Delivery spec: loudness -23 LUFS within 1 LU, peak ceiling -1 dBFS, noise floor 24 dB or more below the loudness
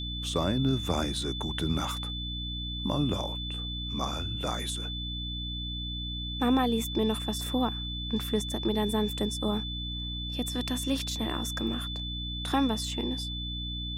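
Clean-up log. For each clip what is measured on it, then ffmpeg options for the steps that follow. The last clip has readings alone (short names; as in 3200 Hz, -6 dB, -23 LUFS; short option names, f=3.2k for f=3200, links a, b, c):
hum 60 Hz; harmonics up to 300 Hz; hum level -34 dBFS; steady tone 3500 Hz; tone level -36 dBFS; loudness -30.5 LUFS; peak -14.0 dBFS; loudness target -23.0 LUFS
-> -af "bandreject=f=60:t=h:w=6,bandreject=f=120:t=h:w=6,bandreject=f=180:t=h:w=6,bandreject=f=240:t=h:w=6,bandreject=f=300:t=h:w=6"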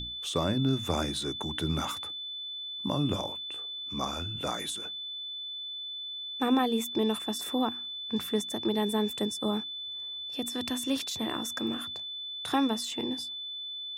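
hum none; steady tone 3500 Hz; tone level -36 dBFS
-> -af "bandreject=f=3.5k:w=30"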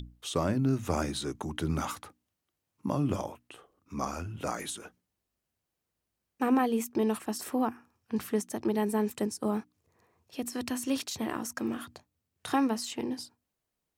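steady tone none; loudness -32.0 LUFS; peak -15.0 dBFS; loudness target -23.0 LUFS
-> -af "volume=9dB"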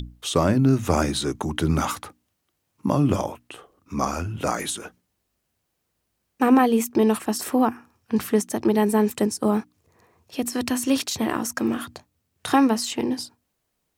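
loudness -23.0 LUFS; peak -6.0 dBFS; noise floor -76 dBFS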